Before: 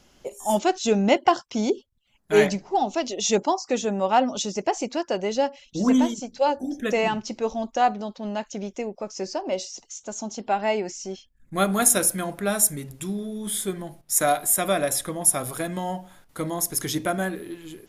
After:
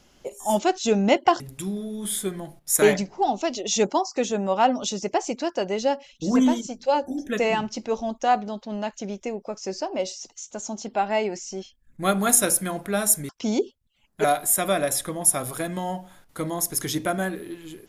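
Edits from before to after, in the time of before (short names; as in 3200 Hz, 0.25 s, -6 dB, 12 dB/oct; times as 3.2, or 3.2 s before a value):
1.4–2.35 swap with 12.82–14.24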